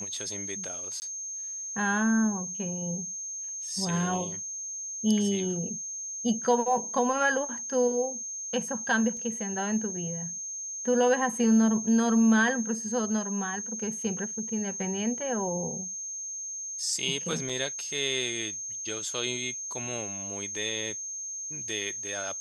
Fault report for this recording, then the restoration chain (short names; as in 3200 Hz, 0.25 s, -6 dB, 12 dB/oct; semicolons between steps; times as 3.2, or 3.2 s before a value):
tone 6400 Hz -34 dBFS
1–1.02 gap 19 ms
9.17 gap 2.6 ms
17.49–17.5 gap 5.2 ms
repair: notch 6400 Hz, Q 30; interpolate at 1, 19 ms; interpolate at 9.17, 2.6 ms; interpolate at 17.49, 5.2 ms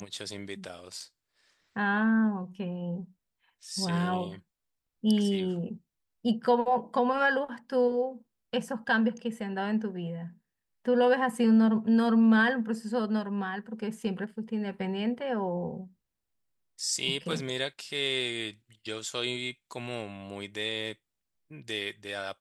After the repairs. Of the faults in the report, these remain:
none